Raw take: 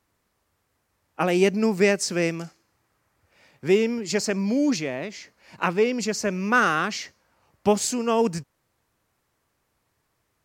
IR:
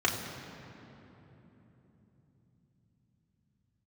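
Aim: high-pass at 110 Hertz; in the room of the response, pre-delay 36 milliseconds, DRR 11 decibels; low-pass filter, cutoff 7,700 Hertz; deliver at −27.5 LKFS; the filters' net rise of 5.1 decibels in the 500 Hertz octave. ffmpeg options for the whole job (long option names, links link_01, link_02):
-filter_complex "[0:a]highpass=110,lowpass=7700,equalizer=frequency=500:width_type=o:gain=6.5,asplit=2[link_01][link_02];[1:a]atrim=start_sample=2205,adelay=36[link_03];[link_02][link_03]afir=irnorm=-1:irlink=0,volume=-22.5dB[link_04];[link_01][link_04]amix=inputs=2:normalize=0,volume=-7dB"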